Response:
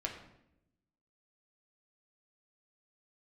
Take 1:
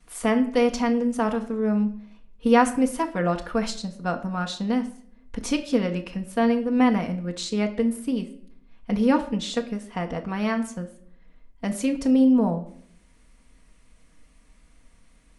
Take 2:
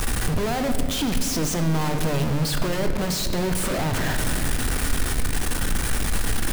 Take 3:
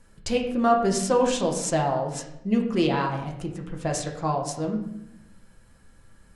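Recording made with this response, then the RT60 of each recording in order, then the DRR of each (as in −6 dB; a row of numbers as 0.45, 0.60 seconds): 3; non-exponential decay, 2.5 s, 0.80 s; −10.5, 6.0, 0.0 decibels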